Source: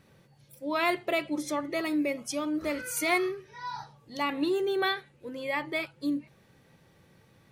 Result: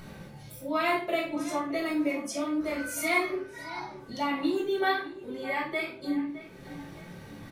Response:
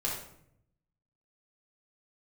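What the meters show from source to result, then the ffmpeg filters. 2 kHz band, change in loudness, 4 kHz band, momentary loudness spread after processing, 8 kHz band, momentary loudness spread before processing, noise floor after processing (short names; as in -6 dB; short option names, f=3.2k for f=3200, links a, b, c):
+0.5 dB, 0.0 dB, -2.0 dB, 17 LU, -1.5 dB, 12 LU, -47 dBFS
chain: -filter_complex "[0:a]asplit=2[a][b];[b]adelay=46,volume=-10.5dB[c];[a][c]amix=inputs=2:normalize=0,acompressor=mode=upward:threshold=-32dB:ratio=2.5,asplit=2[d][e];[e]adelay=613,lowpass=f=3.4k:p=1,volume=-15dB,asplit=2[f][g];[g]adelay=613,lowpass=f=3.4k:p=1,volume=0.47,asplit=2[h][i];[i]adelay=613,lowpass=f=3.4k:p=1,volume=0.47,asplit=2[j][k];[k]adelay=613,lowpass=f=3.4k:p=1,volume=0.47[l];[d][f][h][j][l]amix=inputs=5:normalize=0[m];[1:a]atrim=start_sample=2205,asetrate=79380,aresample=44100[n];[m][n]afir=irnorm=-1:irlink=0,volume=-1.5dB"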